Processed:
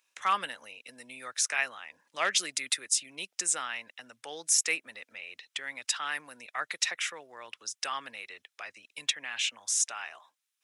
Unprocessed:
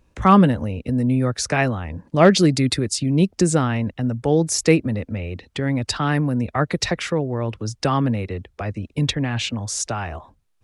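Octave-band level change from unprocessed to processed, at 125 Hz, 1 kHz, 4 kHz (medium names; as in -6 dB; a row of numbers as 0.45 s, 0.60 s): under -40 dB, -12.0 dB, -5.0 dB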